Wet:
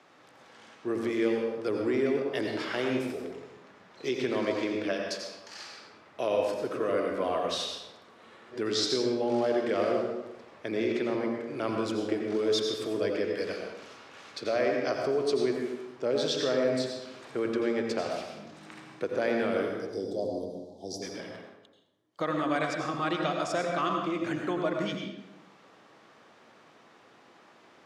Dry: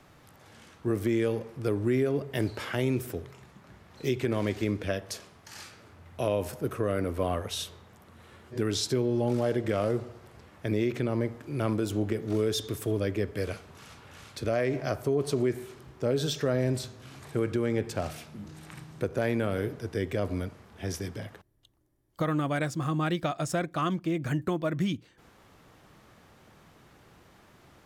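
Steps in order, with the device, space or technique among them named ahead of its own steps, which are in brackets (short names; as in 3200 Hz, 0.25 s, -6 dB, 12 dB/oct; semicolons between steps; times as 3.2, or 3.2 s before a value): 19.79–21.02 elliptic band-stop 810–4100 Hz, stop band 40 dB; dynamic EQ 4700 Hz, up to +6 dB, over -58 dBFS, Q 3.6; supermarket ceiling speaker (BPF 320–6000 Hz; reverb RT60 0.90 s, pre-delay 79 ms, DRR 1.5 dB)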